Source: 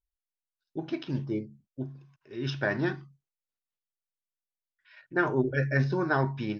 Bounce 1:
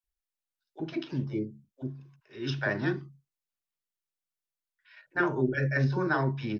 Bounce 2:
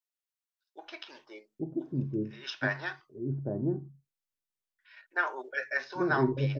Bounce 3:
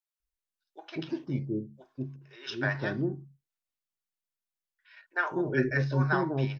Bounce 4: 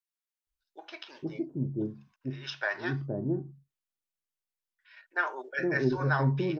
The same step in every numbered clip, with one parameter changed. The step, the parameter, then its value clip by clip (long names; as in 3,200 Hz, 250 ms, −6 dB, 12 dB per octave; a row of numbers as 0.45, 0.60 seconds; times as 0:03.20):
multiband delay without the direct sound, delay time: 40, 840, 200, 470 milliseconds